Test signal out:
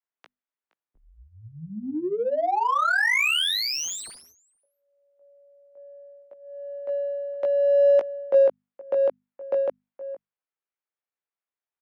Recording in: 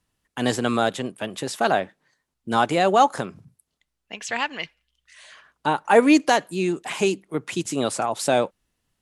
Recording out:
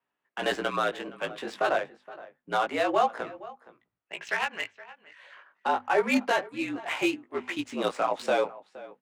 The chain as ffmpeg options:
-filter_complex "[0:a]aemphasis=mode=production:type=riaa,acrossover=split=8300[a][b];[b]acompressor=threshold=-23dB:ratio=4:attack=1:release=60[c];[a][c]amix=inputs=2:normalize=0,acrossover=split=240 2900:gain=0.126 1 0.158[d][e][f];[d][e][f]amix=inputs=3:normalize=0,bandreject=f=50:t=h:w=6,bandreject=f=100:t=h:w=6,bandreject=f=150:t=h:w=6,bandreject=f=200:t=h:w=6,bandreject=f=250:t=h:w=6,bandreject=f=300:t=h:w=6,alimiter=limit=-13.5dB:level=0:latency=1:release=381,afreqshift=-51,aecho=1:1:469:0.133,flanger=delay=17:depth=2.6:speed=0.27,adynamicsmooth=sensitivity=5.5:basefreq=2.4k,volume=2.5dB"

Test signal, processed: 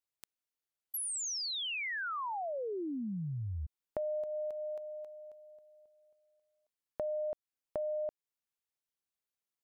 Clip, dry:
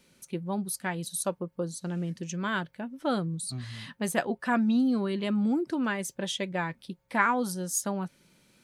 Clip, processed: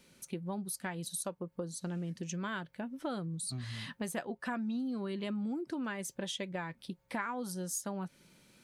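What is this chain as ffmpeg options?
-af "acompressor=threshold=-36dB:ratio=4"

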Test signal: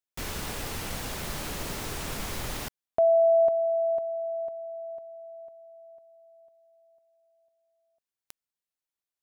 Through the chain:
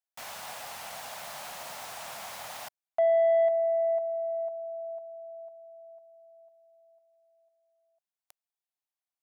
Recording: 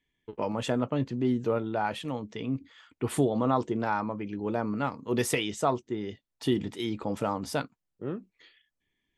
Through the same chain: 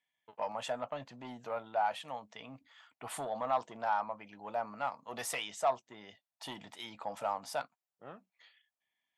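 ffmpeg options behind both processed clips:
-af "highpass=140,asoftclip=type=tanh:threshold=-19dB,lowshelf=f=510:t=q:w=3:g=-10.5,volume=-5.5dB"

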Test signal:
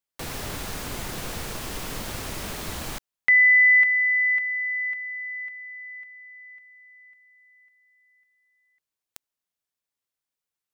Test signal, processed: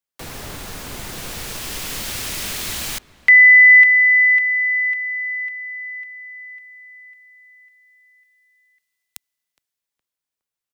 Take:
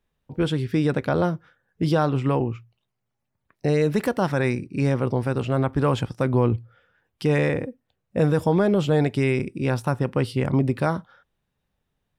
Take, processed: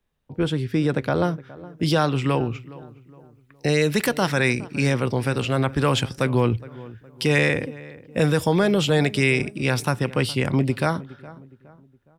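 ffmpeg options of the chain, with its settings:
-filter_complex "[0:a]acrossover=split=110|880|1800[a][b][c][d];[d]dynaudnorm=f=190:g=17:m=11dB[e];[a][b][c][e]amix=inputs=4:normalize=0,asplit=2[f][g];[g]adelay=415,lowpass=f=1.5k:p=1,volume=-18.5dB,asplit=2[h][i];[i]adelay=415,lowpass=f=1.5k:p=1,volume=0.42,asplit=2[j][k];[k]adelay=415,lowpass=f=1.5k:p=1,volume=0.42[l];[f][h][j][l]amix=inputs=4:normalize=0"

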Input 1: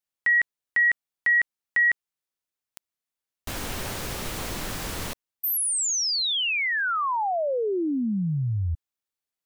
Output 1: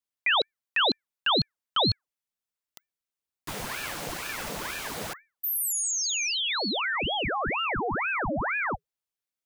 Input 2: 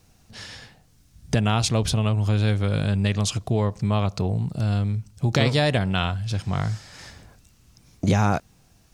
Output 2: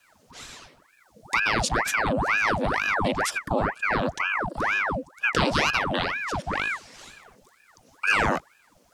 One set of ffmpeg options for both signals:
-af "afreqshift=280,aeval=exprs='val(0)*sin(2*PI*1100*n/s+1100*0.9/2.1*sin(2*PI*2.1*n/s))':c=same"

